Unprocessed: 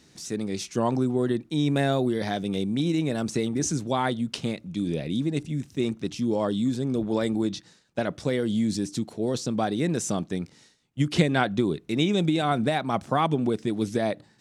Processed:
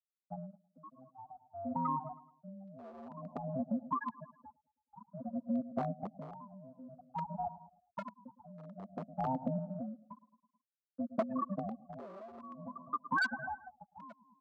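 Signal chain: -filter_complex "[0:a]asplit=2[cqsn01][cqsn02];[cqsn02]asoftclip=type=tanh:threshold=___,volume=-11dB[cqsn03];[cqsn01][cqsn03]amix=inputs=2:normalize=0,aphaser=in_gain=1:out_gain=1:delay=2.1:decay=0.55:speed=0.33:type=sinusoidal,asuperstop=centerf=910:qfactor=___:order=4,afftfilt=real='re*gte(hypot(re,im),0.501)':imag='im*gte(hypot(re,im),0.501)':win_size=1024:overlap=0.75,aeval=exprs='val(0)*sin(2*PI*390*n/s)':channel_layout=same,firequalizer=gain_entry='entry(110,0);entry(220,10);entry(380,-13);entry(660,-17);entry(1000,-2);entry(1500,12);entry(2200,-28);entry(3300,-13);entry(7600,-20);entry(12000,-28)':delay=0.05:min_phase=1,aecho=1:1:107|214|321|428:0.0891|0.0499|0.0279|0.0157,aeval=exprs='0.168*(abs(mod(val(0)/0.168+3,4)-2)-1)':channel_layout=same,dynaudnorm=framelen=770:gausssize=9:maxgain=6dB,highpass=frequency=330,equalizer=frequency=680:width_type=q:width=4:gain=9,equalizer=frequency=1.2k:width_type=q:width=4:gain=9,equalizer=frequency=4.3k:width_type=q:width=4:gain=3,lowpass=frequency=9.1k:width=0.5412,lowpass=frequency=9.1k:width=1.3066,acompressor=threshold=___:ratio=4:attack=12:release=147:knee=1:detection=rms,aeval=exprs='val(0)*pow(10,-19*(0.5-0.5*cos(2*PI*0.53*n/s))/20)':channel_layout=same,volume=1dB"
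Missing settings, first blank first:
-18.5dB, 3.1, -33dB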